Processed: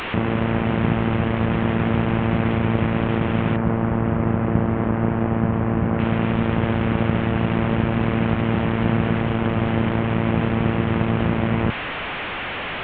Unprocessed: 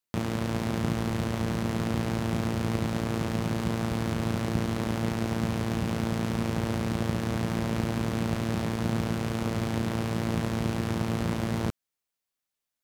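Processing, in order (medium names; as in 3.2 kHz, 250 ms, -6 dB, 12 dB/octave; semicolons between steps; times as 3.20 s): one-bit delta coder 16 kbps, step -29.5 dBFS; 3.56–5.99 s: low-pass 1.5 kHz 12 dB/octave; trim +8.5 dB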